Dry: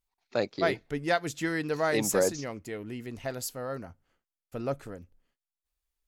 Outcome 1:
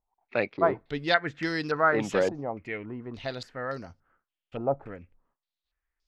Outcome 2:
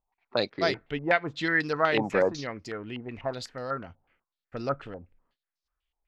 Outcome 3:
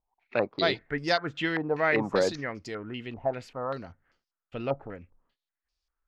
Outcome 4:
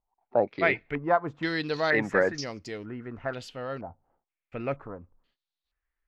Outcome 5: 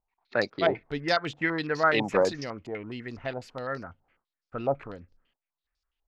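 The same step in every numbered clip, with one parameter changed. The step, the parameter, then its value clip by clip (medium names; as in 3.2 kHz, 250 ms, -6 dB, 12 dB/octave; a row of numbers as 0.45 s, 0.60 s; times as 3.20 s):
step-sequenced low-pass, rate: 3.5 Hz, 8.1 Hz, 5.1 Hz, 2.1 Hz, 12 Hz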